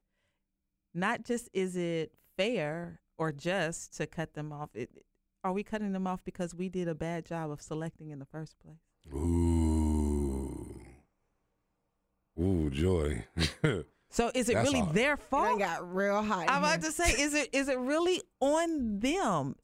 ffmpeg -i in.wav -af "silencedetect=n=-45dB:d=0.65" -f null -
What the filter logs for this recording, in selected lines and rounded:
silence_start: 0.00
silence_end: 0.95 | silence_duration: 0.95
silence_start: 10.90
silence_end: 12.37 | silence_duration: 1.47